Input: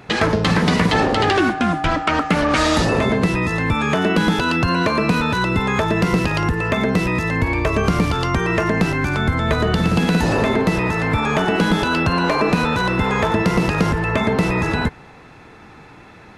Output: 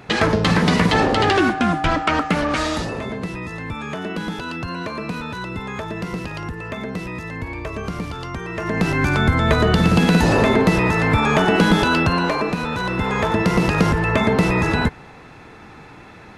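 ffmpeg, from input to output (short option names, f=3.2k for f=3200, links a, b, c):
-af "volume=19.5dB,afade=t=out:st=2.05:d=0.9:silence=0.316228,afade=t=in:st=8.55:d=0.5:silence=0.251189,afade=t=out:st=11.87:d=0.69:silence=0.375837,afade=t=in:st=12.56:d=1.25:silence=0.421697"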